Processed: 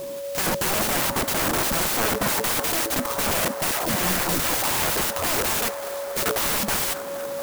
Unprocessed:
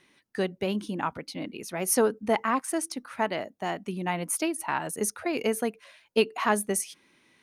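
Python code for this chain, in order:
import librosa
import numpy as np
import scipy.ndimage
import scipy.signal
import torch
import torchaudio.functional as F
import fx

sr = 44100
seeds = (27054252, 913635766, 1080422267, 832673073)

p1 = scipy.signal.sosfilt(scipy.signal.ellip(3, 1.0, 40, [1100.0, 3600.0], 'bandstop', fs=sr, output='sos'), x)
p2 = fx.over_compress(p1, sr, threshold_db=-29.0, ratio=-0.5, at=(1.15, 2.08), fade=0.02)
p3 = fx.differentiator(p2, sr, at=(5.68, 6.26))
p4 = fx.fold_sine(p3, sr, drive_db=20, ceiling_db=-13.5)
p5 = p4 + 10.0 ** (-30.0 / 20.0) * np.sin(2.0 * np.pi * 560.0 * np.arange(len(p4)) / sr)
p6 = (np.mod(10.0 ** (18.0 / 20.0) * p5 + 1.0, 2.0) - 1.0) / 10.0 ** (18.0 / 20.0)
p7 = fx.dispersion(p6, sr, late='lows', ms=138.0, hz=540.0, at=(3.71, 4.49))
p8 = p7 + fx.echo_wet_bandpass(p7, sr, ms=236, feedback_pct=81, hz=890.0, wet_db=-10.0, dry=0)
y = fx.clock_jitter(p8, sr, seeds[0], jitter_ms=0.072)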